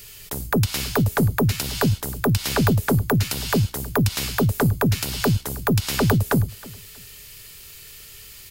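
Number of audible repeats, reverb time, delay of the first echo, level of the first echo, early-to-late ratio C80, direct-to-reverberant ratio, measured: 2, no reverb audible, 318 ms, −21.0 dB, no reverb audible, no reverb audible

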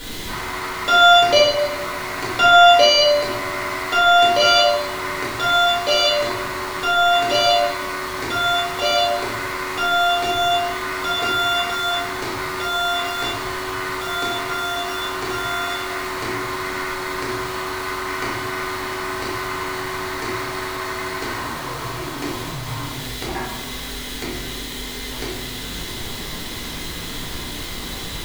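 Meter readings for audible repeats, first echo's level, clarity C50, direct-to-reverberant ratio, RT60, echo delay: no echo audible, no echo audible, 1.0 dB, −7.0 dB, 1.1 s, no echo audible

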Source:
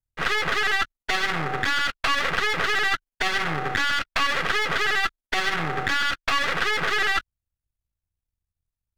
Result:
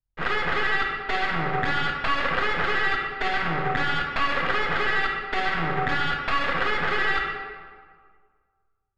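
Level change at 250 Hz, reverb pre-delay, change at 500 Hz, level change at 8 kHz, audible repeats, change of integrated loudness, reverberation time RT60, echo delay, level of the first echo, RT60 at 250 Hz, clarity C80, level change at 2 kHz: +2.5 dB, 23 ms, +1.5 dB, below −10 dB, no echo audible, −1.0 dB, 1.8 s, no echo audible, no echo audible, 1.8 s, 4.5 dB, −1.5 dB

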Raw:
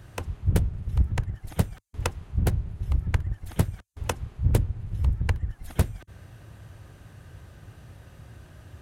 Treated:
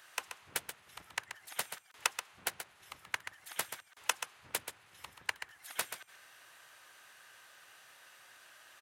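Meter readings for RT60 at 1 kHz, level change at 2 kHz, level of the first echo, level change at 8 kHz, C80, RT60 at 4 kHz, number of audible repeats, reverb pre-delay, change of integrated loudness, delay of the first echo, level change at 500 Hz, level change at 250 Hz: no reverb audible, +1.5 dB, −9.0 dB, +2.5 dB, no reverb audible, no reverb audible, 1, no reverb audible, −11.0 dB, 131 ms, −14.0 dB, −27.5 dB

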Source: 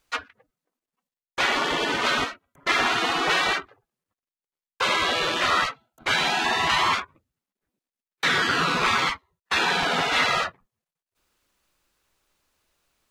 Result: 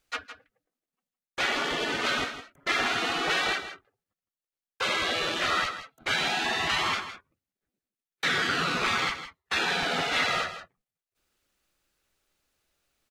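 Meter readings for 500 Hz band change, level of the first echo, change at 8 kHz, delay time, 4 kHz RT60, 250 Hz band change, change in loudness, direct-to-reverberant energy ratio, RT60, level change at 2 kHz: −4.0 dB, −11.5 dB, −3.5 dB, 161 ms, no reverb audible, −4.0 dB, −4.5 dB, no reverb audible, no reverb audible, −4.0 dB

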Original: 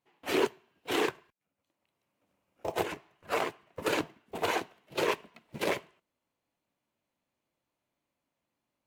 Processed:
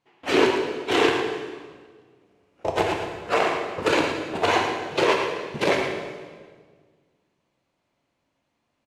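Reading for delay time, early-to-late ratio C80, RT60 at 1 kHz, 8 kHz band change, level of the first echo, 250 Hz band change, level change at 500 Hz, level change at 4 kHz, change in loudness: 111 ms, 4.0 dB, 1.5 s, +6.0 dB, −8.0 dB, +10.5 dB, +10.0 dB, +10.0 dB, +9.5 dB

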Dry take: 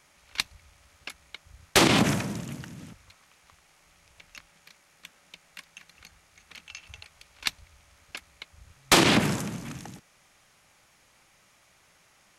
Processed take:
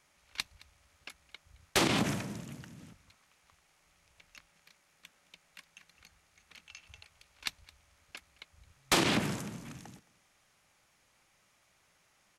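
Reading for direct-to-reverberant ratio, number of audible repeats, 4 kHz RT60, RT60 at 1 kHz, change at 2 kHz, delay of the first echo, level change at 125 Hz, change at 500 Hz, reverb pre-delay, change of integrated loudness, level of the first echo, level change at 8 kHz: no reverb audible, 1, no reverb audible, no reverb audible, −8.0 dB, 217 ms, −8.0 dB, −8.0 dB, no reverb audible, −8.0 dB, −22.0 dB, −8.0 dB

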